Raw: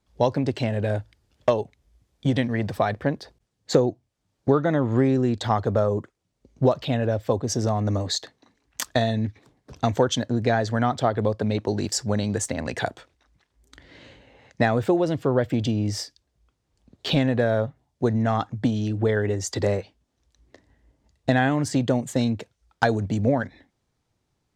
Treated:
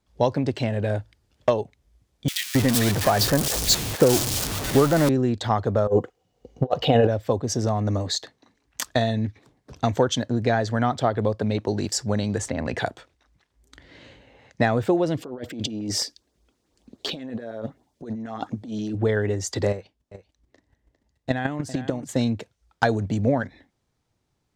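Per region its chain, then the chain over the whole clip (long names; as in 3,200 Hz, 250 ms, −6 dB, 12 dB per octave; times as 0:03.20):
0:02.28–0:05.09: converter with a step at zero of −23 dBFS + high-shelf EQ 2,700 Hz +10 dB + multiband delay without the direct sound highs, lows 270 ms, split 1,900 Hz
0:05.87–0:07.07: parametric band 8,900 Hz −6 dB 0.29 octaves + hollow resonant body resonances 490/740/2,900 Hz, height 15 dB + compressor whose output falls as the input rises −19 dBFS, ratio −0.5
0:12.39–0:12.79: low-pass filter 2,600 Hz 6 dB per octave + envelope flattener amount 50%
0:15.17–0:18.95: low shelf with overshoot 180 Hz −8.5 dB, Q 1.5 + compressor whose output falls as the input rises −31 dBFS + auto-filter notch saw up 9.4 Hz 570–3,400 Hz
0:19.71–0:22.09: single-tap delay 403 ms −12 dB + square-wave tremolo 6.9 Hz, depth 60%, duty 10%
whole clip: no processing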